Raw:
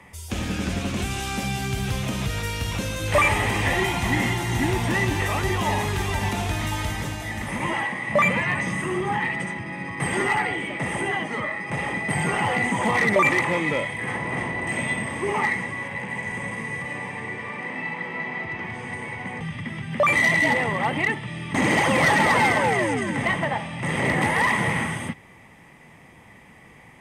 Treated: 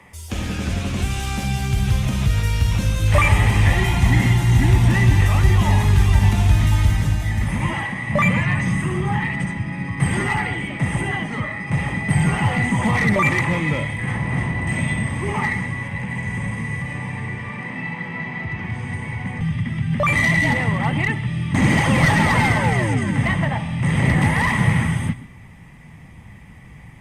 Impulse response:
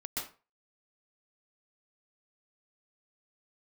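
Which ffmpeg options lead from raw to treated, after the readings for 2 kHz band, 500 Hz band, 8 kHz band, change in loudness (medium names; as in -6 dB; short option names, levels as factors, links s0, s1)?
+0.5 dB, -2.0 dB, +1.0 dB, +4.0 dB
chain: -filter_complex "[0:a]asubboost=boost=6:cutoff=160,asplit=2[s0][s1];[1:a]atrim=start_sample=2205[s2];[s1][s2]afir=irnorm=-1:irlink=0,volume=0.15[s3];[s0][s3]amix=inputs=2:normalize=0" -ar 48000 -c:a libopus -b:a 48k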